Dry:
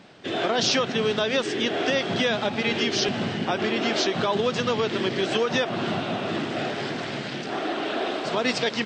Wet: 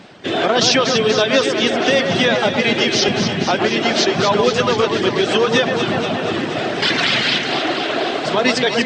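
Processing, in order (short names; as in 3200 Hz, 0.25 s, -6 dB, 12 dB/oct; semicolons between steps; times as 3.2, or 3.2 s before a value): reverb removal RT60 1.8 s; 6.82–7.38 bell 3200 Hz +15 dB 2.8 oct; echo with dull and thin repeats by turns 0.12 s, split 2200 Hz, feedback 84%, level -5.5 dB; gain +8.5 dB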